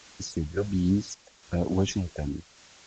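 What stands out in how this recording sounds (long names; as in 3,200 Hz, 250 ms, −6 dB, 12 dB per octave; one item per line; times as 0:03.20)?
phaser sweep stages 6, 1.3 Hz, lowest notch 230–3,100 Hz
a quantiser's noise floor 8 bits, dither triangular
sample-and-hold tremolo
AAC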